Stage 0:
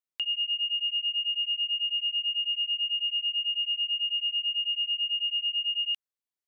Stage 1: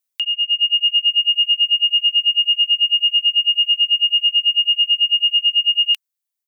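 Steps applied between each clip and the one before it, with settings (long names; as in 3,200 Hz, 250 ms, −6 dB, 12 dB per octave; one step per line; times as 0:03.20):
reverb reduction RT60 1.8 s
spectral tilt +3.5 dB per octave
automatic gain control gain up to 8 dB
level +3 dB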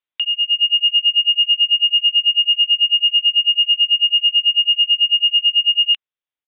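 downsampling to 8,000 Hz
level +1 dB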